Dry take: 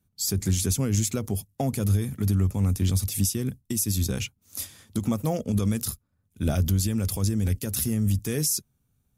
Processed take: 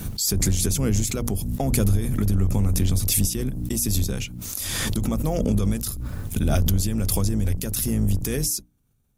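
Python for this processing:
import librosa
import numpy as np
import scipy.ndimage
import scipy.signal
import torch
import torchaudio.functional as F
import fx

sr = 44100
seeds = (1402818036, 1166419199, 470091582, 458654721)

y = fx.octave_divider(x, sr, octaves=2, level_db=-2.0)
y = fx.hum_notches(y, sr, base_hz=60, count=5)
y = fx.pre_swell(y, sr, db_per_s=21.0)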